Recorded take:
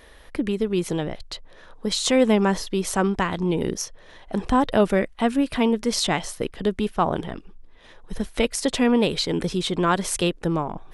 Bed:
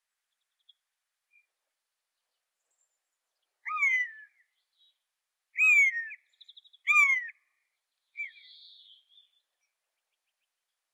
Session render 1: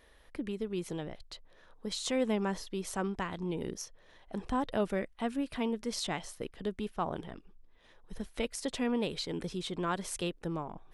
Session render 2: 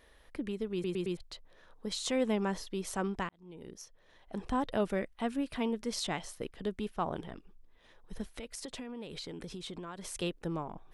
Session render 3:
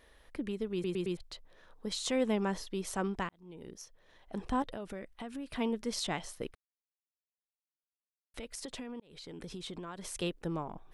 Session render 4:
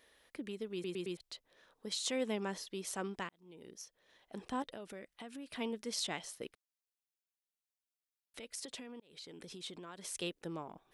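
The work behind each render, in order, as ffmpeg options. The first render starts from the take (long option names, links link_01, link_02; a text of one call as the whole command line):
ffmpeg -i in.wav -af "volume=-12.5dB" out.wav
ffmpeg -i in.wav -filter_complex "[0:a]asplit=3[link_01][link_02][link_03];[link_01]afade=type=out:start_time=8.34:duration=0.02[link_04];[link_02]acompressor=threshold=-38dB:ratio=16:attack=3.2:release=140:knee=1:detection=peak,afade=type=in:start_time=8.34:duration=0.02,afade=type=out:start_time=10.14:duration=0.02[link_05];[link_03]afade=type=in:start_time=10.14:duration=0.02[link_06];[link_04][link_05][link_06]amix=inputs=3:normalize=0,asplit=6[link_07][link_08][link_09][link_10][link_11][link_12];[link_07]atrim=end=0.842[link_13];[link_08]atrim=start=0.728:end=0.842[link_14];[link_09]atrim=start=0.728:end=0.842[link_15];[link_10]atrim=start=0.728:end=0.842[link_16];[link_11]atrim=start=1.168:end=3.29,asetpts=PTS-STARTPTS,afade=type=out:start_time=2.118:duration=0.004:curve=hsin[link_17];[link_12]atrim=start=3.29,asetpts=PTS-STARTPTS,afade=type=in:duration=1.21[link_18];[link_13][link_14]acrossfade=duration=0.004:curve1=hsin:curve2=hsin[link_19];[link_19][link_15]acrossfade=duration=0.004:curve1=hsin:curve2=hsin[link_20];[link_20][link_16]acrossfade=duration=0.004:curve1=hsin:curve2=hsin[link_21];[link_17][link_18]concat=n=2:v=0:a=1[link_22];[link_21][link_22]acrossfade=duration=0.004:curve1=hsin:curve2=hsin" out.wav
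ffmpeg -i in.wav -filter_complex "[0:a]asettb=1/sr,asplit=3[link_01][link_02][link_03];[link_01]atrim=end=4.624[link_04];[link_02]atrim=start=4.62:end=5.53,asetpts=PTS-STARTPTS,afade=type=in:duration=0.004:curve=qsin,afade=type=out:start_time=0.906:duration=0.004:curve=qsin,acompressor=threshold=-38dB:ratio=5:attack=3.2:release=140:knee=1:detection=peak[link_05];[link_03]atrim=start=5.526[link_06];[link_04][link_05]acrossfade=duration=0.004:curve1=hsin:curve2=qsin[link_07];[link_07][link_06]acrossfade=duration=0.004:curve1=qsin:curve2=hsin,asplit=4[link_08][link_09][link_10][link_11];[link_08]atrim=end=6.55,asetpts=PTS-STARTPTS,afade=type=out:start_time=6.546:duration=0.004:curve=hsin[link_12];[link_09]atrim=start=6.55:end=8.34,asetpts=PTS-STARTPTS,volume=0[link_13];[link_10]atrim=start=8.34:end=9,asetpts=PTS-STARTPTS,afade=type=in:duration=0.004:curve=hsin,afade=type=out:start_time=0.656:duration=0.004:curve=hsin[link_14];[link_11]atrim=start=9,asetpts=PTS-STARTPTS,afade=type=in:duration=0.64:curve=qsin[link_15];[link_12][link_13][link_14][link_15]concat=n=4:v=0:a=1" out.wav
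ffmpeg -i in.wav -af "highpass=frequency=430:poles=1,equalizer=frequency=1000:width=0.69:gain=-5.5" out.wav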